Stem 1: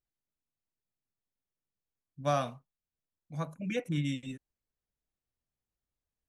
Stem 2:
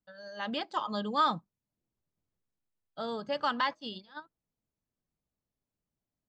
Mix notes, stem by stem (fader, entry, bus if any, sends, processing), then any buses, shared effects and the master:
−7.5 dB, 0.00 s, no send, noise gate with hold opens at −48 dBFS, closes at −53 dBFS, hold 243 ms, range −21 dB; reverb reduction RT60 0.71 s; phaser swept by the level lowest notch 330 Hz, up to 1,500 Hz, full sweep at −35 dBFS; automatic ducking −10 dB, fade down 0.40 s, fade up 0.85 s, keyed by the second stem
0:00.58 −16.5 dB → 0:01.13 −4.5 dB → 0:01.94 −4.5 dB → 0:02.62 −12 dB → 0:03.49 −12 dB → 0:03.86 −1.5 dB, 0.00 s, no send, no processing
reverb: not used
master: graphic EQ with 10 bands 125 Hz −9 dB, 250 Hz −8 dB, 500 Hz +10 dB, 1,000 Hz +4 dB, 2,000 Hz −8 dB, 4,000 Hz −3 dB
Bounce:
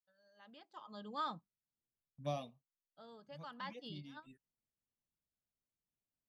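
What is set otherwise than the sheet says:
stem 2 −16.5 dB → −25.0 dB
master: missing graphic EQ with 10 bands 125 Hz −9 dB, 250 Hz −8 dB, 500 Hz +10 dB, 1,000 Hz +4 dB, 2,000 Hz −8 dB, 4,000 Hz −3 dB

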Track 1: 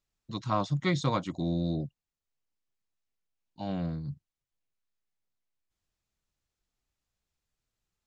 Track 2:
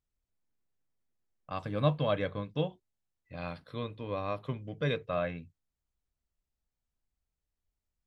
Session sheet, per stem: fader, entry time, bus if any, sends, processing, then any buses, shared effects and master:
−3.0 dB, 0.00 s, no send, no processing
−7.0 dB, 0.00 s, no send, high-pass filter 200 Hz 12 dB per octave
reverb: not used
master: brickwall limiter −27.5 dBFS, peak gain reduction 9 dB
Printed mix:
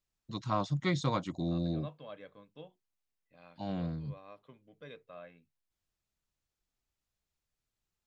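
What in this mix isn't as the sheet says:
stem 2 −7.0 dB → −17.0 dB
master: missing brickwall limiter −27.5 dBFS, peak gain reduction 9 dB

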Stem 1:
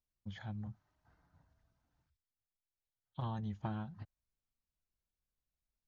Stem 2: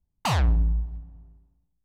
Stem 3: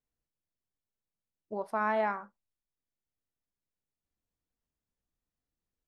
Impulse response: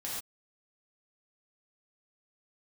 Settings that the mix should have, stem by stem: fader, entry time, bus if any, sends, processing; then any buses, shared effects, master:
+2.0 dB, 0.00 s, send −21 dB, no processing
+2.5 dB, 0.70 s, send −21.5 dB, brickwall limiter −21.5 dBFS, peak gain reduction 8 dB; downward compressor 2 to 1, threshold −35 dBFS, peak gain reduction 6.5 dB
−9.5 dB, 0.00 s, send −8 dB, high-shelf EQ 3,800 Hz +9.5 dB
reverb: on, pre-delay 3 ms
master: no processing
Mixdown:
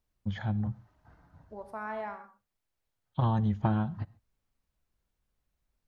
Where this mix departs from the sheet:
stem 1 +2.0 dB → +12.0 dB
stem 2: muted
master: extra high-shelf EQ 2,700 Hz −9.5 dB

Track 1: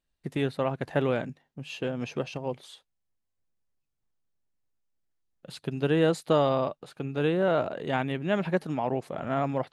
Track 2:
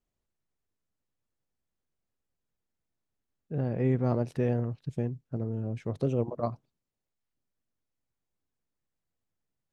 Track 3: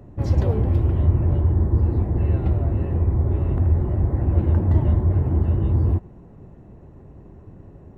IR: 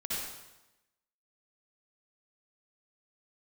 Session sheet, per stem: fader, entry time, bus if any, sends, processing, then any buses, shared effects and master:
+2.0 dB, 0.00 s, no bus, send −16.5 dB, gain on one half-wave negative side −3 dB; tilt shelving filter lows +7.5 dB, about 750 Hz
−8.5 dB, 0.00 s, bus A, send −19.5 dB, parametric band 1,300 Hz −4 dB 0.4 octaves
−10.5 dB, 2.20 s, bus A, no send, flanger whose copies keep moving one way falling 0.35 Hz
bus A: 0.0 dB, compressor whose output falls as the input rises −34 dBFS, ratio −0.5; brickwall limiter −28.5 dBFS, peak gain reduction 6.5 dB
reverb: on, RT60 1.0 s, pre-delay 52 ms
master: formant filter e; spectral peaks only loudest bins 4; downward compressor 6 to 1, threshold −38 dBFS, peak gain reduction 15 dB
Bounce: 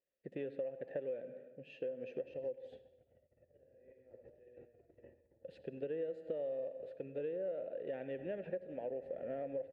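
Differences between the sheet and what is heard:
stem 3 −10.5 dB → +1.0 dB
master: missing spectral peaks only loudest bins 4

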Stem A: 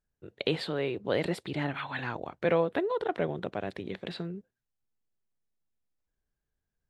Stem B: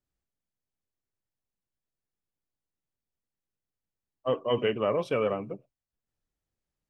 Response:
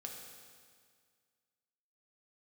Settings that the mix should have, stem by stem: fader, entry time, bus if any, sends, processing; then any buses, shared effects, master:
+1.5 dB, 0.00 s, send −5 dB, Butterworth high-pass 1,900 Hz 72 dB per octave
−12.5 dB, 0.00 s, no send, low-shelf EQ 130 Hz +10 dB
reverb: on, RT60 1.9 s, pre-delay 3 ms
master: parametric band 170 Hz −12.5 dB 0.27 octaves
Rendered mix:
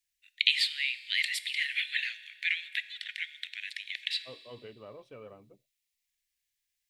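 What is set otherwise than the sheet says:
stem A +1.5 dB → +9.0 dB
stem B −12.5 dB → −21.5 dB

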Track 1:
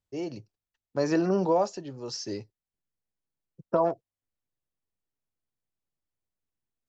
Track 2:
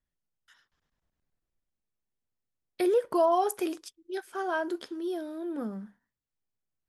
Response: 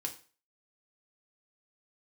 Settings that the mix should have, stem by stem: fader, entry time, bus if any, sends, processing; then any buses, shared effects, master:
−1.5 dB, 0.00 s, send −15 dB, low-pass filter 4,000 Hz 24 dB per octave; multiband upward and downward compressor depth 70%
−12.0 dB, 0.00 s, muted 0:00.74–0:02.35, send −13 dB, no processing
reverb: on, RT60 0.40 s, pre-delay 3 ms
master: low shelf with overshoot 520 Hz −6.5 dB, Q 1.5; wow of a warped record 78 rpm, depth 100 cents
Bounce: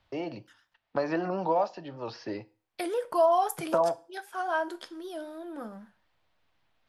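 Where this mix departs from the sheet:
stem 2 −12.0 dB → −3.0 dB
reverb return +8.0 dB

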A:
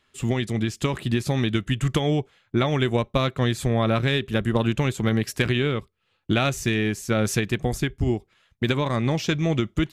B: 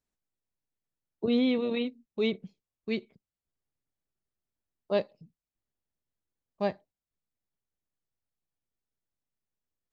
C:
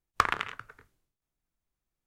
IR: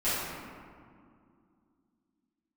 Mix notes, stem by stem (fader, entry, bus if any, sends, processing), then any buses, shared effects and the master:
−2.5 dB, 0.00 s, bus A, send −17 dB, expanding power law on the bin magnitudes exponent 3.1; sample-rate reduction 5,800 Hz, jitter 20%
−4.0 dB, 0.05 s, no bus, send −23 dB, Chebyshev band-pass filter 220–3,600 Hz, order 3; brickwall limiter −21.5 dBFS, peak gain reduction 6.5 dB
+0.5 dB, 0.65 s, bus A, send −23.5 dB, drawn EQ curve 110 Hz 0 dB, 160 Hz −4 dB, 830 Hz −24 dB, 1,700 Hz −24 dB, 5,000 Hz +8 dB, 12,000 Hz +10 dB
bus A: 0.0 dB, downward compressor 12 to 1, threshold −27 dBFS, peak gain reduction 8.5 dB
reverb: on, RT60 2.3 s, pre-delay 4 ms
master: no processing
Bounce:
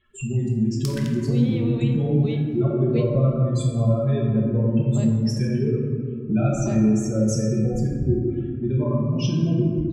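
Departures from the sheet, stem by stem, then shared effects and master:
stem A: missing sample-rate reduction 5,800 Hz, jitter 20%
stem B: missing Chebyshev band-pass filter 220–3,600 Hz, order 3
reverb return +9.5 dB

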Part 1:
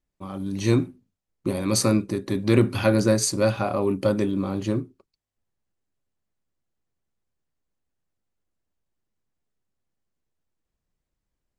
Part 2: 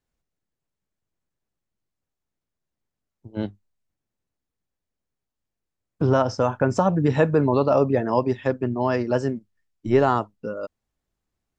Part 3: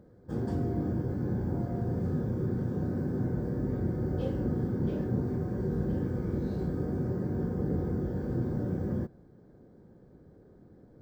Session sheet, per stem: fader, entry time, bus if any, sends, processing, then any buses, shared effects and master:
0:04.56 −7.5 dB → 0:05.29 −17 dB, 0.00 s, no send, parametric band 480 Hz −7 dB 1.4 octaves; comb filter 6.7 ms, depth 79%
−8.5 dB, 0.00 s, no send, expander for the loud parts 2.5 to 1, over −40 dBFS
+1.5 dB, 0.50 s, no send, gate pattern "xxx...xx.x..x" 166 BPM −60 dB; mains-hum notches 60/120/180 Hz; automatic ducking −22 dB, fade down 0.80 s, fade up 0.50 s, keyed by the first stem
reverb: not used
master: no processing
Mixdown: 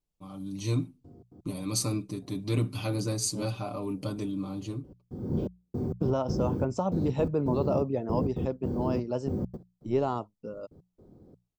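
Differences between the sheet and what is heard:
stem 2: missing expander for the loud parts 2.5 to 1, over −40 dBFS
master: extra parametric band 1,700 Hz −15 dB 0.6 octaves

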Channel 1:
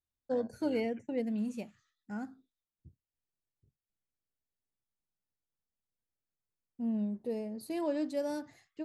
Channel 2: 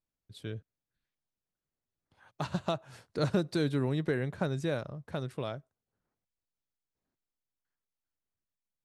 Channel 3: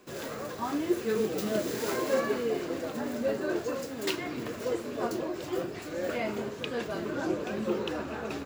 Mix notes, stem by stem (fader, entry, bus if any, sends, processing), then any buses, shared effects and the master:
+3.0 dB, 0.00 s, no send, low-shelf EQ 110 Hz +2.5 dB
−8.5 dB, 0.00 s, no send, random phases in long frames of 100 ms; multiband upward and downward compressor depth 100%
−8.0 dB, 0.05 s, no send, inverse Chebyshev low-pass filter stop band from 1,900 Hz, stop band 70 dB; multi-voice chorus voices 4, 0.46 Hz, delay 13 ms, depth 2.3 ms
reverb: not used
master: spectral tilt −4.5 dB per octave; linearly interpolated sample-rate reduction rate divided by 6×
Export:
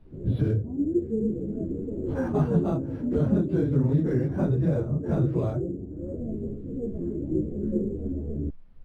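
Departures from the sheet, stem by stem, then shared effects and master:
stem 1: muted
stem 2 −8.5 dB → −2.0 dB
stem 3 −8.0 dB → −0.5 dB

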